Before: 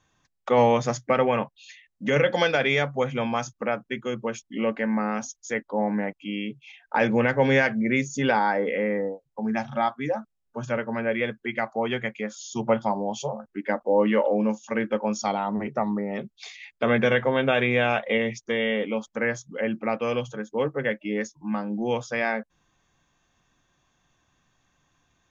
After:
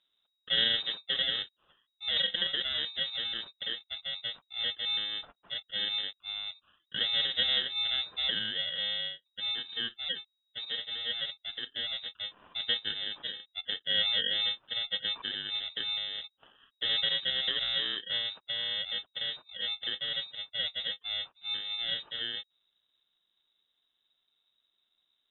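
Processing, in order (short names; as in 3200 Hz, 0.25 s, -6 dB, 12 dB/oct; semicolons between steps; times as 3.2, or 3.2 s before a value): FFT order left unsorted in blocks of 32 samples; inverted band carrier 3800 Hz; gain -6.5 dB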